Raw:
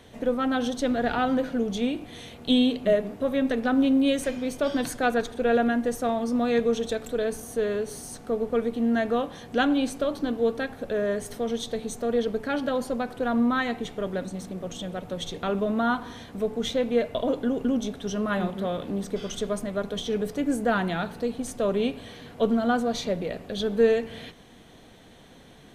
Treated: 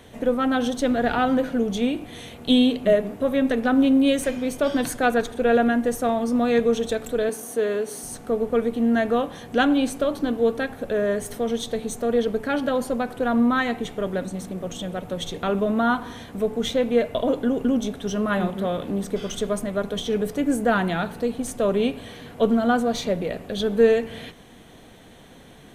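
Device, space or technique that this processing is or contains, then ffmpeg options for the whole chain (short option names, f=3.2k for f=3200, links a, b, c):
exciter from parts: -filter_complex "[0:a]asplit=2[a][b];[b]highpass=4.1k,asoftclip=type=tanh:threshold=-33.5dB,highpass=4.2k,volume=-6dB[c];[a][c]amix=inputs=2:normalize=0,asettb=1/sr,asplit=3[d][e][f];[d]atrim=end=7.294[g];[e]atrim=start=7.29:end=8.03,asetpts=PTS-STARTPTS,afade=t=in:d=0.004:c=qsin,afade=t=out:st=0.736:d=0.004:c=qsin,highpass=220[h];[f]atrim=start=8.026[i];[g][h]acrossfade=d=0.004:c1=hsin:c2=qsin[j];[j][i]acrossfade=d=0.004:c1=qsin:c2=hsin,volume=3.5dB"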